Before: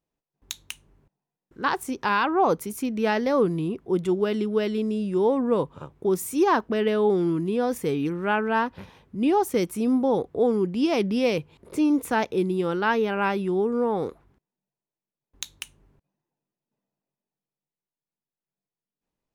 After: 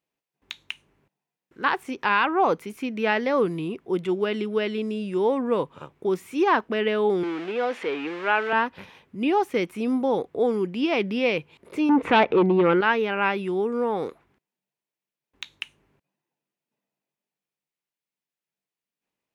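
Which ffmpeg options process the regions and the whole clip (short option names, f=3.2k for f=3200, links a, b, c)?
-filter_complex "[0:a]asettb=1/sr,asplit=3[a][b][c];[a]atrim=end=7.234[d];[b]atrim=start=7.23:end=8.53,asetpts=PTS-STARTPTS,afade=t=in:d=0.004:c=qsin,afade=t=out:st=1.296:d=0.004:c=qsin,aeval=exprs='val(0)+0.5*0.0299*sgn(val(0))':c=same,highpass=390,lowpass=3.5k[e];[c]atrim=start=8.526[f];[d][e]acrossfade=d=0.004:c1=hsin:c2=qsin[g];[g][f]acrossfade=d=0.004:c1=qsin:c2=hsin,asettb=1/sr,asplit=3[h][i][j];[h]atrim=end=11.894[k];[i]atrim=start=11.89:end=12.81,asetpts=PTS-STARTPTS,afade=t=in:d=0.004:c=qsin,afade=t=out:st=0.916:d=0.004:c=qsin,lowpass=1.8k,acompressor=mode=upward:threshold=-29dB:ratio=2.5:attack=3.2:release=140:knee=2.83:detection=peak,aeval=exprs='0.224*sin(PI/2*2*val(0)/0.224)':c=same[l];[j]atrim=start=12.806[m];[k][l]acrossfade=d=0.004:c1=hsin:c2=qsin[n];[n][m]acrossfade=d=0.004:c1=qsin:c2=hsin,equalizer=f=2.4k:w=1.2:g=7,acrossover=split=3900[o][p];[p]acompressor=threshold=-51dB:ratio=4:attack=1:release=60[q];[o][q]amix=inputs=2:normalize=0,highpass=f=220:p=1"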